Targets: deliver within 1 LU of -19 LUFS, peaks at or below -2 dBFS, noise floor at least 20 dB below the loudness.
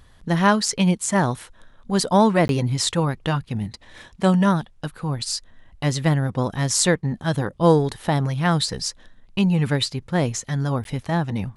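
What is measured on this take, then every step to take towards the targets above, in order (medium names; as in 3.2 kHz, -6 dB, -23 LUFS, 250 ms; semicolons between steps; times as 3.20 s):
dropouts 2; longest dropout 12 ms; loudness -21.5 LUFS; peak level -3.0 dBFS; loudness target -19.0 LUFS
-> interpolate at 2.48/10.84 s, 12 ms; trim +2.5 dB; peak limiter -2 dBFS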